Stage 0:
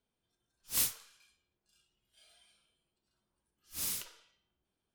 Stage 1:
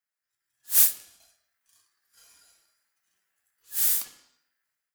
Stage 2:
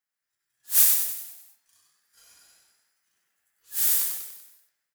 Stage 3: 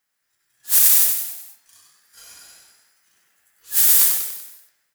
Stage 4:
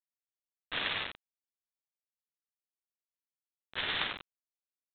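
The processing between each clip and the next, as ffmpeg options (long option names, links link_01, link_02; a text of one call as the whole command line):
ffmpeg -i in.wav -af "aeval=exprs='val(0)*sin(2*PI*1700*n/s)':channel_layout=same,dynaudnorm=framelen=220:gausssize=5:maxgain=12dB,aemphasis=mode=production:type=50kf,volume=-7.5dB" out.wav
ffmpeg -i in.wav -filter_complex "[0:a]asplit=8[link_01][link_02][link_03][link_04][link_05][link_06][link_07][link_08];[link_02]adelay=96,afreqshift=57,volume=-4dB[link_09];[link_03]adelay=192,afreqshift=114,volume=-9.8dB[link_10];[link_04]adelay=288,afreqshift=171,volume=-15.7dB[link_11];[link_05]adelay=384,afreqshift=228,volume=-21.5dB[link_12];[link_06]adelay=480,afreqshift=285,volume=-27.4dB[link_13];[link_07]adelay=576,afreqshift=342,volume=-33.2dB[link_14];[link_08]adelay=672,afreqshift=399,volume=-39.1dB[link_15];[link_01][link_09][link_10][link_11][link_12][link_13][link_14][link_15]amix=inputs=8:normalize=0" out.wav
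ffmpeg -i in.wav -af "alimiter=level_in=13dB:limit=-1dB:release=50:level=0:latency=1,volume=-1dB" out.wav
ffmpeg -i in.wav -af "lowshelf=frequency=420:gain=-5,aresample=8000,aeval=exprs='val(0)*gte(abs(val(0)),0.0211)':channel_layout=same,aresample=44100,volume=1dB" out.wav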